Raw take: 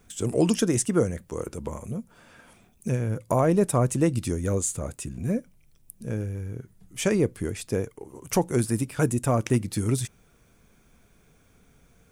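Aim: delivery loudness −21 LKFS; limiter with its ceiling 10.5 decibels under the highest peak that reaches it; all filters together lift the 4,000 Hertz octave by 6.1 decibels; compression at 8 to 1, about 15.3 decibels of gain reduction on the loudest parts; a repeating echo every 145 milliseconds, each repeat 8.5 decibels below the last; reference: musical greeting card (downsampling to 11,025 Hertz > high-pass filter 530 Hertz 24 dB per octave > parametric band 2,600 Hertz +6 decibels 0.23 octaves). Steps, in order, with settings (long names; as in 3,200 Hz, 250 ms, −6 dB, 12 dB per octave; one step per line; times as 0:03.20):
parametric band 4,000 Hz +7.5 dB
downward compressor 8 to 1, threshold −33 dBFS
brickwall limiter −28 dBFS
repeating echo 145 ms, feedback 38%, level −8.5 dB
downsampling to 11,025 Hz
high-pass filter 530 Hz 24 dB per octave
parametric band 2,600 Hz +6 dB 0.23 octaves
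level +25.5 dB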